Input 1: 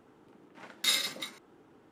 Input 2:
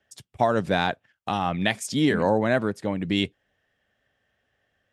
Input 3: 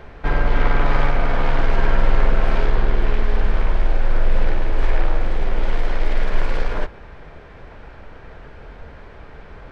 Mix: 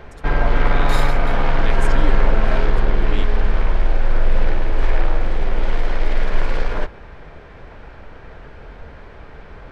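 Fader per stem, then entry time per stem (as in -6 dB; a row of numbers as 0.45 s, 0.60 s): -6.5 dB, -8.5 dB, +1.0 dB; 0.05 s, 0.00 s, 0.00 s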